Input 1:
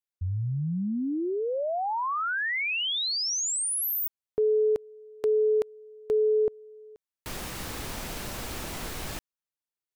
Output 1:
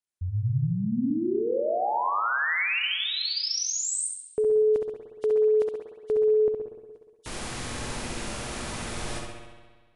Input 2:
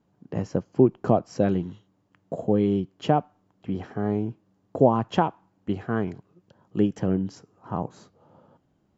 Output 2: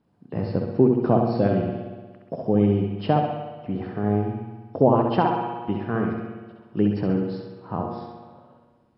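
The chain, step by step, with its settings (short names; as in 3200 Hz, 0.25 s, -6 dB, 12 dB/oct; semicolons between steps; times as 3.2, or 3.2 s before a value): nonlinear frequency compression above 2800 Hz 1.5:1; flutter echo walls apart 11.6 m, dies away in 0.74 s; spring tank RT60 1.5 s, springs 59 ms, chirp 50 ms, DRR 5 dB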